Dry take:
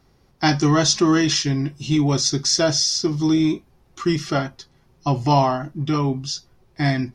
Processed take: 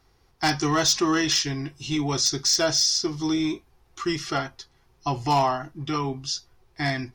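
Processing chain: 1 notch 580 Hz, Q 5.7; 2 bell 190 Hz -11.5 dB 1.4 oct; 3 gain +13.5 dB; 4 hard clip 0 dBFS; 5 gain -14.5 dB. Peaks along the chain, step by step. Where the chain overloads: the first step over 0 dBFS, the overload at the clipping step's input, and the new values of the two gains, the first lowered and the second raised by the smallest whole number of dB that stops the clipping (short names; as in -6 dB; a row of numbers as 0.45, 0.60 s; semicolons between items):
-4.0, -4.0, +9.5, 0.0, -14.5 dBFS; step 3, 9.5 dB; step 3 +3.5 dB, step 5 -4.5 dB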